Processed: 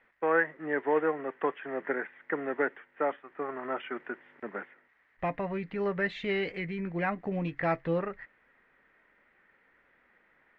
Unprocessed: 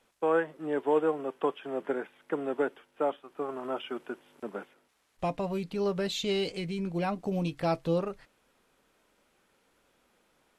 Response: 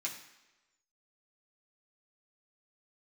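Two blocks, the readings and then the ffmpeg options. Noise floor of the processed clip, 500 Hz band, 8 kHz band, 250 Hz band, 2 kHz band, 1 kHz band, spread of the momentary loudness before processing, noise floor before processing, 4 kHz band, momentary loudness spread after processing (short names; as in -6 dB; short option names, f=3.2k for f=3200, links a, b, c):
-68 dBFS, -1.5 dB, under -20 dB, -2.0 dB, +8.0 dB, +0.5 dB, 11 LU, -71 dBFS, -8.0 dB, 13 LU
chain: -af "lowpass=f=1.9k:t=q:w=7.2,volume=-2dB"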